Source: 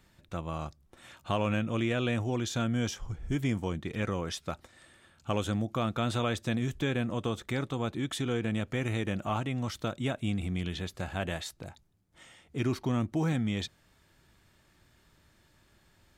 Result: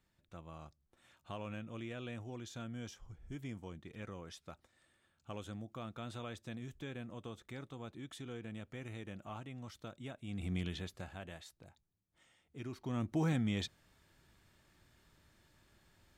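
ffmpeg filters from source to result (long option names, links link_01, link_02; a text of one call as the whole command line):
ffmpeg -i in.wav -af "volume=7dB,afade=type=in:start_time=10.27:duration=0.26:silence=0.281838,afade=type=out:start_time=10.53:duration=0.68:silence=0.281838,afade=type=in:start_time=12.77:duration=0.4:silence=0.281838" out.wav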